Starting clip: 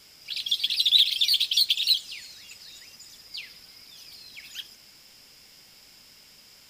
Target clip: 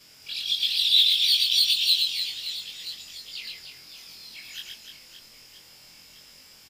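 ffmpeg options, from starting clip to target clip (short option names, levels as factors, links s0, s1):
-af "afftfilt=real='re':imag='-im':win_size=2048:overlap=0.75,aecho=1:1:120|300|570|975|1582:0.631|0.398|0.251|0.158|0.1,volume=1.58"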